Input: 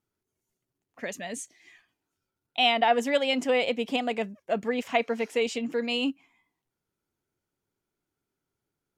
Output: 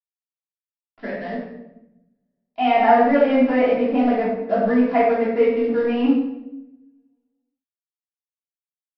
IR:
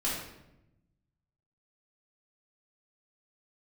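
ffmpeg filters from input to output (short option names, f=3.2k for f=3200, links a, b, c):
-filter_complex "[0:a]lowpass=f=1.8k:w=0.5412,lowpass=f=1.8k:w=1.3066,aresample=11025,aeval=exprs='sgn(val(0))*max(abs(val(0))-0.00355,0)':c=same,aresample=44100[a];[1:a]atrim=start_sample=2205[b];[a][b]afir=irnorm=-1:irlink=0,volume=2.5dB"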